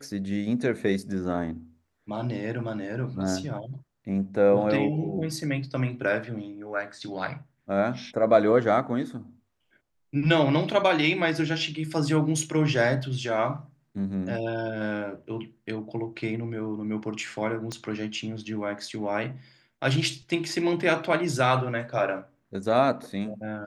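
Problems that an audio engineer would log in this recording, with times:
0:17.72: click −20 dBFS

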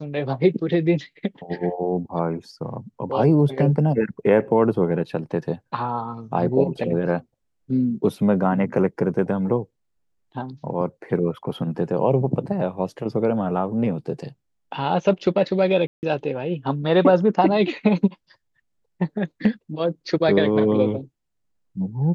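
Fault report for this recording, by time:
0:15.87–0:16.03: drop-out 159 ms

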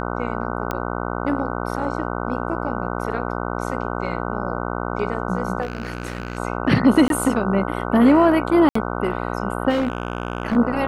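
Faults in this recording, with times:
mains buzz 60 Hz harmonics 25 −26 dBFS
0:00.71: click −11 dBFS
0:05.61–0:06.38: clipping −21.5 dBFS
0:07.08–0:07.10: drop-out 22 ms
0:08.69–0:08.75: drop-out 64 ms
0:09.69–0:10.57: clipping −16.5 dBFS

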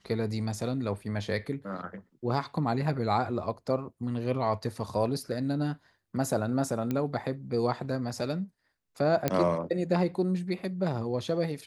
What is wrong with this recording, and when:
0:06.91: click −18 dBFS
0:09.28: click −11 dBFS

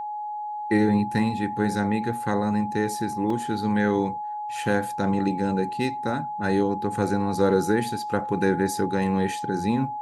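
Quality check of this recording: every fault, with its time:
whistle 840 Hz −29 dBFS
0:03.30: drop-out 3.1 ms

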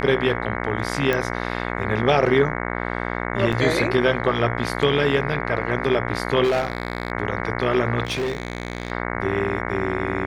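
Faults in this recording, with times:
mains buzz 60 Hz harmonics 37 −27 dBFS
0:01.13: click −9 dBFS
0:03.52–0:03.53: drop-out 6 ms
0:06.43–0:07.12: clipping −16.5 dBFS
0:08.05–0:08.92: clipping −20.5 dBFS

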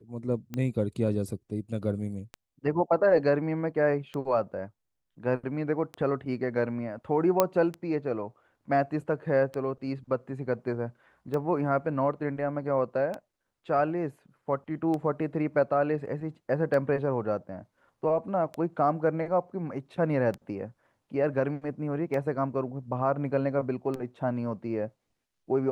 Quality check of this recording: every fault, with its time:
scratch tick 33 1/3 rpm −21 dBFS
0:07.40: click −7 dBFS

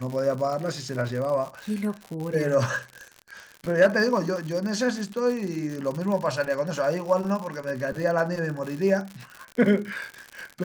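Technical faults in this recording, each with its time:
surface crackle 110 per second −31 dBFS

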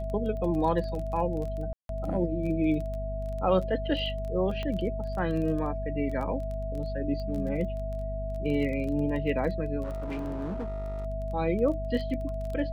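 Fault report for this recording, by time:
surface crackle 15 per second −34 dBFS
mains hum 50 Hz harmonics 5 −34 dBFS
whistle 650 Hz −35 dBFS
0:01.73–0:01.89: drop-out 162 ms
0:04.63: click −22 dBFS
0:09.83–0:11.06: clipping −30 dBFS

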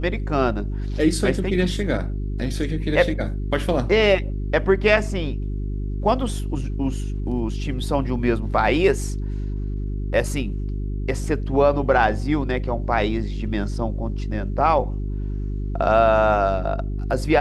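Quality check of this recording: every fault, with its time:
mains hum 50 Hz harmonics 8 −26 dBFS

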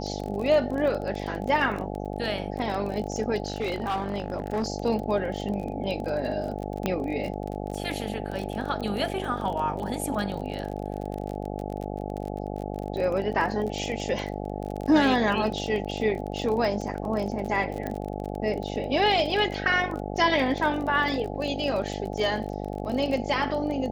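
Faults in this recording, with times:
mains buzz 50 Hz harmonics 17 −33 dBFS
surface crackle 30 per second −31 dBFS
0:03.46–0:04.68: clipping −23 dBFS
0:06.86: click −12 dBFS
0:17.87: click −19 dBFS

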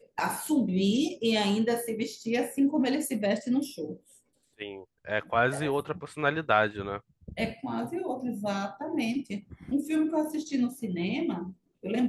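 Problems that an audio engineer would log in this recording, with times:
0:06.06: drop-out 2.1 ms

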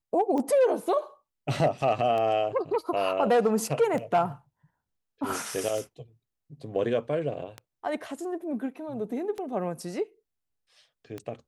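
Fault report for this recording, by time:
scratch tick 33 1/3 rpm −21 dBFS

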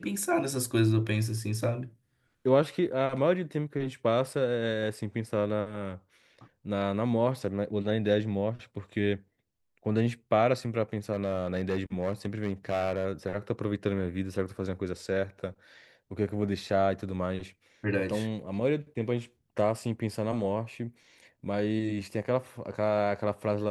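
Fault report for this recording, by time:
0:11.12–0:13.05: clipping −23.5 dBFS

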